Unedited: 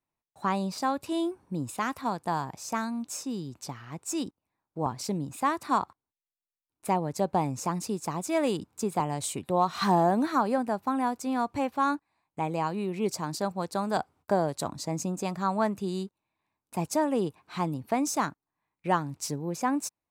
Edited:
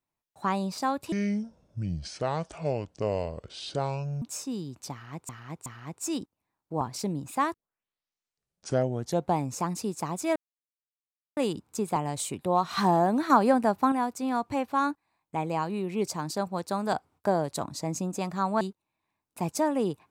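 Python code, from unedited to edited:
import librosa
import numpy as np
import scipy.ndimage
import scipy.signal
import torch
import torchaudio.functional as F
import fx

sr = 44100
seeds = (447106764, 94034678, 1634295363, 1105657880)

y = fx.edit(x, sr, fx.speed_span(start_s=1.12, length_s=1.89, speed=0.61),
    fx.repeat(start_s=3.71, length_s=0.37, count=3),
    fx.tape_start(start_s=5.59, length_s=1.83),
    fx.insert_silence(at_s=8.41, length_s=1.01),
    fx.clip_gain(start_s=10.34, length_s=0.62, db=5.0),
    fx.cut(start_s=15.65, length_s=0.32), tone=tone)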